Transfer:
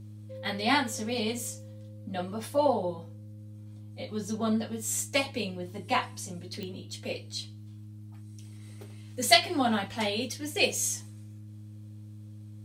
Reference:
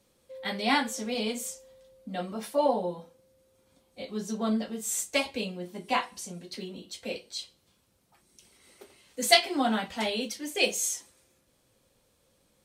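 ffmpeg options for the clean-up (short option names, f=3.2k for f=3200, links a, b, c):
-af "adeclick=t=4,bandreject=f=105.3:t=h:w=4,bandreject=f=210.6:t=h:w=4,bandreject=f=315.9:t=h:w=4"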